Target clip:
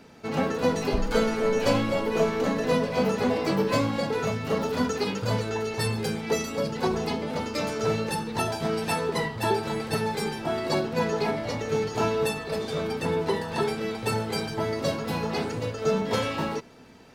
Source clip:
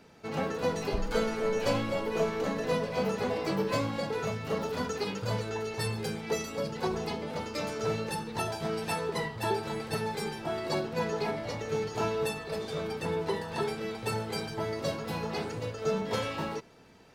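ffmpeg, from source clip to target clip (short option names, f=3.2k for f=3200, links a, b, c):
-af "equalizer=f=250:t=o:w=0.21:g=7,volume=5dB"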